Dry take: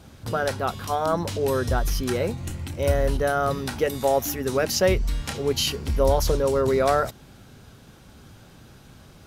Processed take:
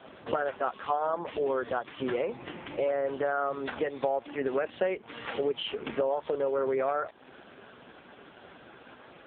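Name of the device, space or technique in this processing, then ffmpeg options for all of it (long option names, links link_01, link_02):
voicemail: -filter_complex "[0:a]asplit=3[link_01][link_02][link_03];[link_01]afade=type=out:start_time=0.78:duration=0.02[link_04];[link_02]lowshelf=frequency=160:gain=-2.5,afade=type=in:start_time=0.78:duration=0.02,afade=type=out:start_time=2.31:duration=0.02[link_05];[link_03]afade=type=in:start_time=2.31:duration=0.02[link_06];[link_04][link_05][link_06]amix=inputs=3:normalize=0,highpass=380,lowpass=3200,acompressor=threshold=-35dB:ratio=6,volume=9dB" -ar 8000 -c:a libopencore_amrnb -b:a 4750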